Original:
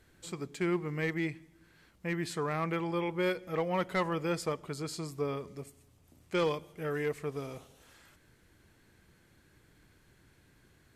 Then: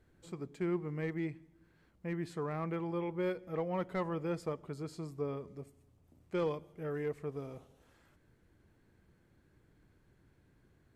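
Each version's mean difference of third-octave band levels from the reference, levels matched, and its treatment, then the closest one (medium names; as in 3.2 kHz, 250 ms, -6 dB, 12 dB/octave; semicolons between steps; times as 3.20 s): 4.0 dB: tilt shelf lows +6 dB, about 1.5 kHz; trim -8.5 dB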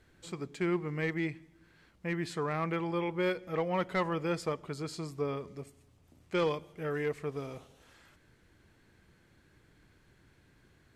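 1.0 dB: treble shelf 8.6 kHz -11 dB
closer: second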